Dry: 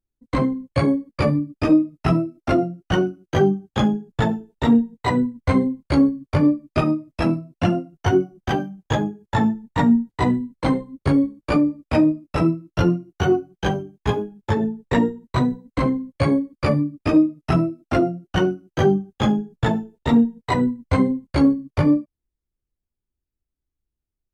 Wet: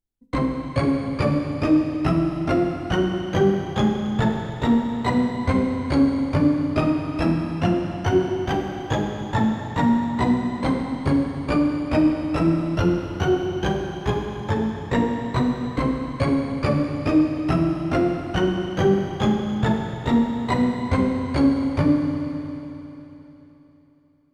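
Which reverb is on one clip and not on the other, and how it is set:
four-comb reverb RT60 3.4 s, combs from 33 ms, DRR 3 dB
level −2.5 dB

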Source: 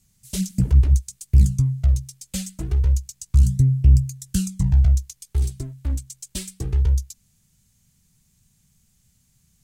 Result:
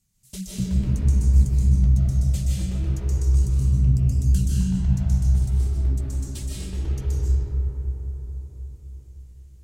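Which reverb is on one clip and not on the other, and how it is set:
comb and all-pass reverb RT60 4.7 s, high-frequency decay 0.3×, pre-delay 110 ms, DRR −8 dB
level −9 dB

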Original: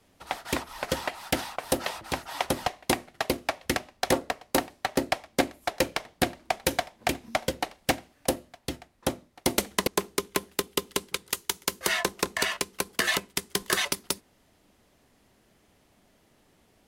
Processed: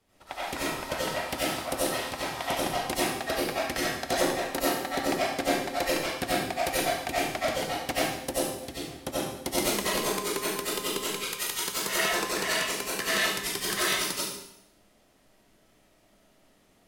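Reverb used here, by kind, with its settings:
comb and all-pass reverb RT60 0.79 s, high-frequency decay 1×, pre-delay 50 ms, DRR −9 dB
level −8.5 dB

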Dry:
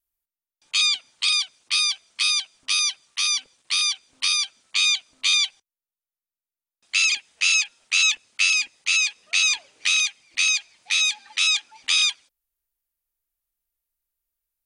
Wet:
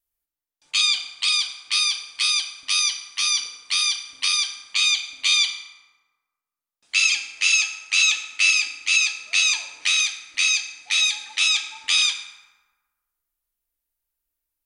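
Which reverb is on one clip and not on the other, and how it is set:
feedback delay network reverb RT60 1.4 s, low-frequency decay 1×, high-frequency decay 0.5×, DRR 3.5 dB

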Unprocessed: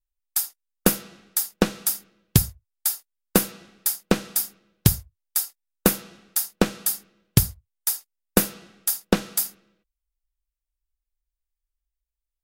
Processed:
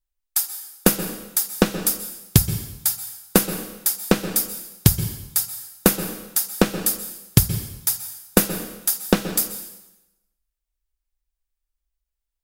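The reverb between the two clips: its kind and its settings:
dense smooth reverb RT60 0.94 s, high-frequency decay 0.95×, pre-delay 115 ms, DRR 10 dB
level +2.5 dB

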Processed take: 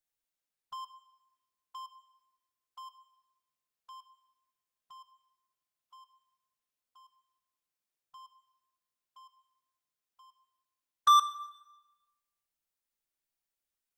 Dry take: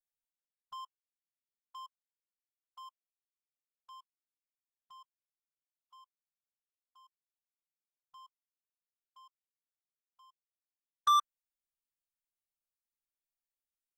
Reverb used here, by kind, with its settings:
dense smooth reverb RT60 1.1 s, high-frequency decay 0.9×, DRR 11.5 dB
level +4 dB

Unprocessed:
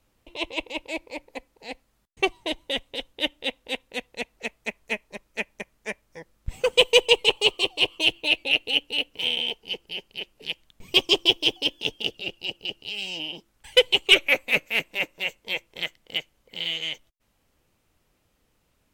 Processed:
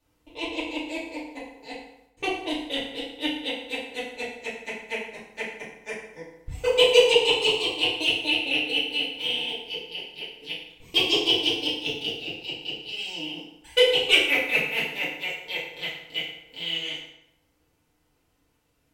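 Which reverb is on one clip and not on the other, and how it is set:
feedback delay network reverb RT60 0.84 s, low-frequency decay 0.95×, high-frequency decay 0.75×, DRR −8.5 dB
level −9.5 dB

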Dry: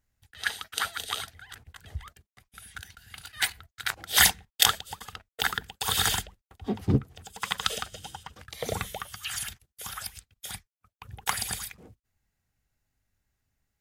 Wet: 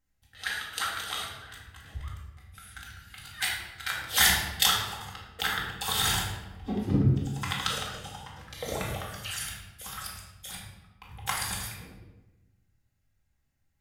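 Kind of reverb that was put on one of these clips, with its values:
rectangular room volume 540 cubic metres, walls mixed, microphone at 2.1 metres
level −5.5 dB

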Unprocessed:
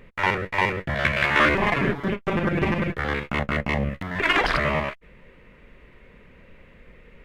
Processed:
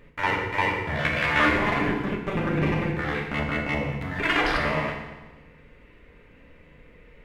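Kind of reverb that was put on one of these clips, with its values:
feedback delay network reverb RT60 1.2 s, low-frequency decay 1.2×, high-frequency decay 0.9×, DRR 0.5 dB
level −4.5 dB

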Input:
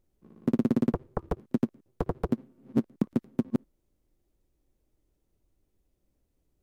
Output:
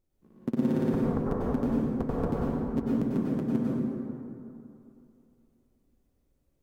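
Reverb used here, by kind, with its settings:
dense smooth reverb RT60 2.7 s, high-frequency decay 0.45×, pre-delay 85 ms, DRR −6.5 dB
level −5 dB

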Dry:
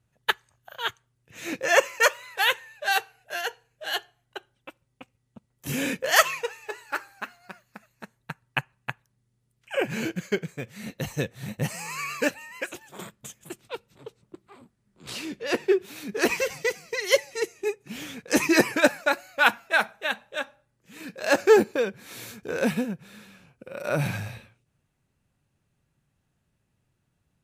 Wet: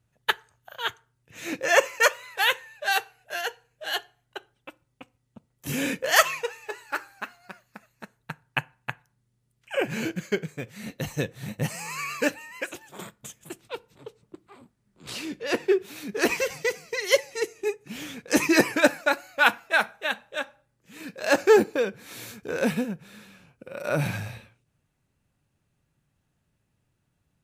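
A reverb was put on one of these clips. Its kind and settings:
feedback delay network reverb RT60 0.4 s, low-frequency decay 0.85×, high-frequency decay 0.65×, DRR 19 dB

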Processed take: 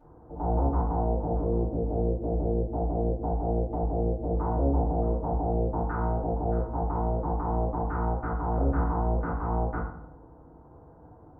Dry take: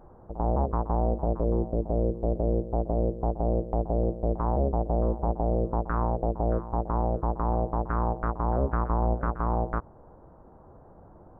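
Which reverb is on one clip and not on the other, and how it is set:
feedback delay network reverb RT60 0.68 s, low-frequency decay 1.4×, high-frequency decay 0.55×, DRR −9 dB
level −11.5 dB

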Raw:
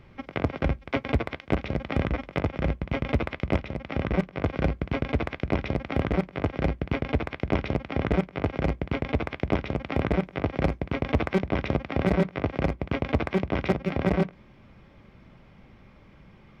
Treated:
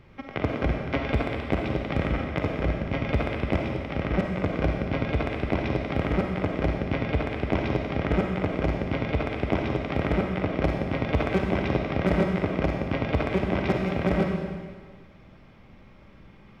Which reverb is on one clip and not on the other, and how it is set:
comb and all-pass reverb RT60 1.6 s, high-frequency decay 1×, pre-delay 10 ms, DRR 1 dB
level −1 dB

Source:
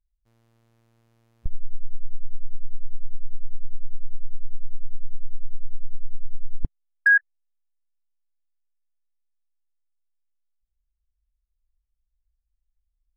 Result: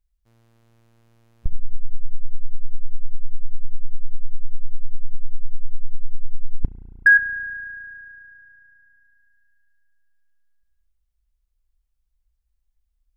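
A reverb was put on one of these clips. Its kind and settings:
spring reverb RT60 3.1 s, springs 34 ms, chirp 75 ms, DRR 10.5 dB
level +4.5 dB

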